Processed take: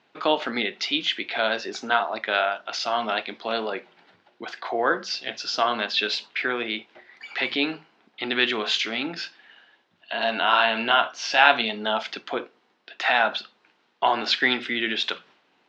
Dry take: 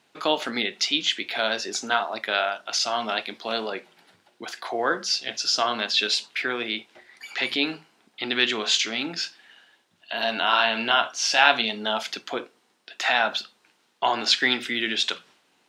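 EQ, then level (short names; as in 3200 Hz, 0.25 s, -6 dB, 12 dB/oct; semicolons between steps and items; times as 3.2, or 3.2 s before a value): air absorption 200 m; low shelf 180 Hz -5.5 dB; +3.0 dB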